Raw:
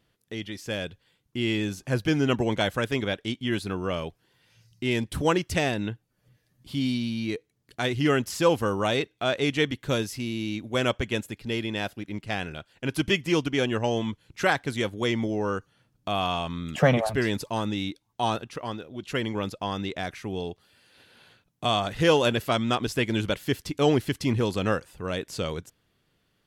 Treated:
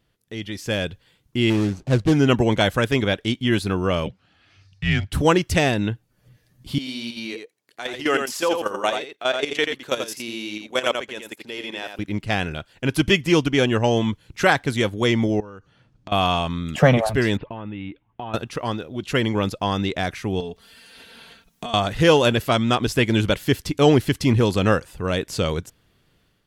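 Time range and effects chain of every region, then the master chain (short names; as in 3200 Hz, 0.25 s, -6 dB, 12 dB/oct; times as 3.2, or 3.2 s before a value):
1.5–2.13 median filter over 25 samples + LPF 7200 Hz + high shelf 4700 Hz +10 dB
4.06–5.13 frequency shift -210 Hz + BPF 100–4500 Hz
6.78–11.99 HPF 420 Hz + level quantiser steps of 13 dB + echo 85 ms -6 dB
15.4–16.12 air absorption 88 m + compressor 12:1, threshold -42 dBFS
17.37–18.34 steep low-pass 3000 Hz 48 dB/oct + compressor 16:1, threshold -35 dBFS
20.4–21.74 comb 4.4 ms, depth 80% + compressor, threshold -35 dBFS + mismatched tape noise reduction encoder only
whole clip: low shelf 78 Hz +6.5 dB; AGC gain up to 7 dB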